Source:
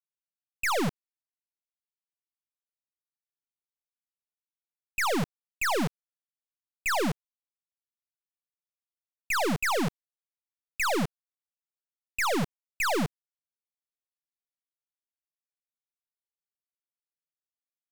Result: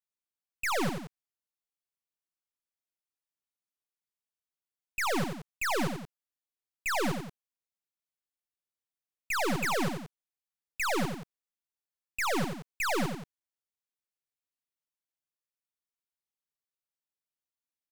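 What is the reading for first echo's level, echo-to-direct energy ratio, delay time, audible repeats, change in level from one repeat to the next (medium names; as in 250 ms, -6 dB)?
-6.5 dB, -5.5 dB, 89 ms, 2, -5.5 dB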